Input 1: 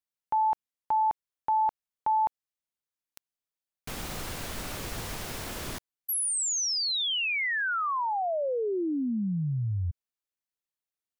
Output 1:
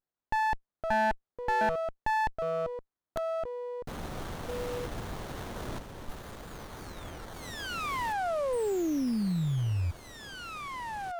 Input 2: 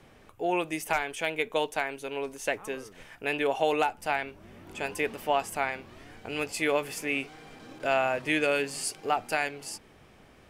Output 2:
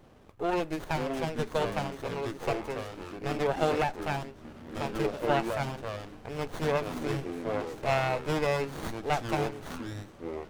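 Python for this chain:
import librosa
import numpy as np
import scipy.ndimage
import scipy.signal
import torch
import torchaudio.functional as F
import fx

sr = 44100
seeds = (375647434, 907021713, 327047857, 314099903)

y = fx.echo_pitch(x, sr, ms=405, semitones=-5, count=2, db_per_echo=-6.0)
y = fx.running_max(y, sr, window=17)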